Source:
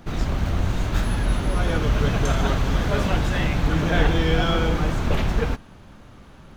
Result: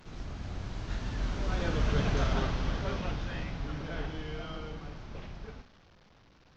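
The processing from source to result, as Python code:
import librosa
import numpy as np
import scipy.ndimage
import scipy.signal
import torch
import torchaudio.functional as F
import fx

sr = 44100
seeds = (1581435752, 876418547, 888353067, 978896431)

y = fx.delta_mod(x, sr, bps=32000, step_db=-30.5)
y = fx.doppler_pass(y, sr, speed_mps=18, closest_m=11.0, pass_at_s=2.05)
y = fx.room_flutter(y, sr, wall_m=8.1, rt60_s=0.25)
y = F.gain(torch.from_numpy(y), -7.5).numpy()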